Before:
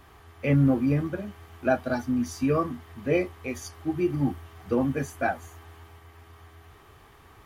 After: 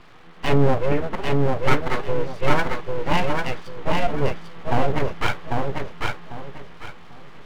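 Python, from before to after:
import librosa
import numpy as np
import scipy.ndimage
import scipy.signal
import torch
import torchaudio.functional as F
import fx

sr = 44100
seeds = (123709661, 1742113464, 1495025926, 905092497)

y = scipy.signal.sosfilt(scipy.signal.butter(6, 3800.0, 'lowpass', fs=sr, output='sos'), x)
y = np.abs(y)
y = fx.echo_feedback(y, sr, ms=796, feedback_pct=26, wet_db=-3)
y = y * librosa.db_to_amplitude(6.5)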